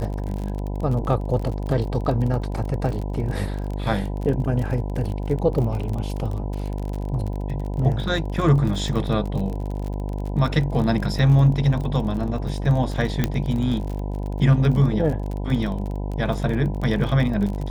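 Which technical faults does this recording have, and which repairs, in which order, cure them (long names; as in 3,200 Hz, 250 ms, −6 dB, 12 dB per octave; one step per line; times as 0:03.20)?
mains buzz 50 Hz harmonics 20 −27 dBFS
surface crackle 36 per second −28 dBFS
0:13.24: click −7 dBFS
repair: click removal
hum removal 50 Hz, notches 20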